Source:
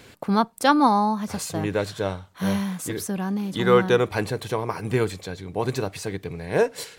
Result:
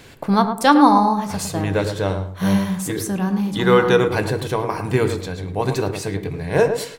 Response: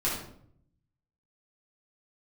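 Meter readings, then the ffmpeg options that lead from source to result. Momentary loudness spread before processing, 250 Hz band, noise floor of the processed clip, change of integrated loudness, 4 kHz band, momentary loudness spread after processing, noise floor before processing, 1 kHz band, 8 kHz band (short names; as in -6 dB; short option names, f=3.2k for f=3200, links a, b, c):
11 LU, +5.5 dB, -37 dBFS, +5.0 dB, +4.0 dB, 11 LU, -49 dBFS, +5.0 dB, +4.0 dB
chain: -filter_complex "[0:a]asplit=2[a][b];[b]adelay=108,lowpass=f=1.2k:p=1,volume=-6.5dB,asplit=2[c][d];[d]adelay=108,lowpass=f=1.2k:p=1,volume=0.28,asplit=2[e][f];[f]adelay=108,lowpass=f=1.2k:p=1,volume=0.28,asplit=2[g][h];[h]adelay=108,lowpass=f=1.2k:p=1,volume=0.28[i];[a][c][e][g][i]amix=inputs=5:normalize=0,asplit=2[j][k];[1:a]atrim=start_sample=2205,atrim=end_sample=3528,lowshelf=f=150:g=9.5[l];[k][l]afir=irnorm=-1:irlink=0,volume=-16dB[m];[j][m]amix=inputs=2:normalize=0,volume=2.5dB"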